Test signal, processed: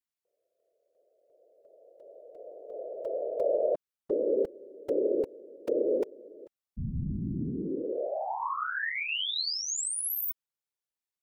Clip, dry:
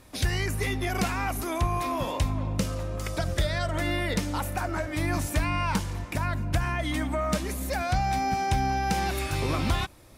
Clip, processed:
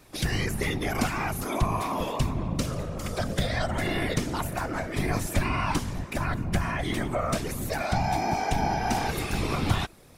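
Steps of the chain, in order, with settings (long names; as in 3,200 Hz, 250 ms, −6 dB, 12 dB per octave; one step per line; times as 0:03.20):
random phases in short frames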